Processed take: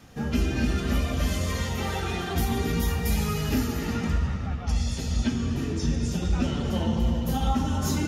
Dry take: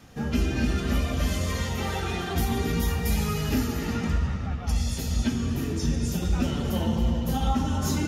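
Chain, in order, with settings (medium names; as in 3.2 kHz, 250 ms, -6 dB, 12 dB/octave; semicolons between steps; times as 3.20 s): 4.63–7.00 s: low-pass 7.6 kHz 12 dB/octave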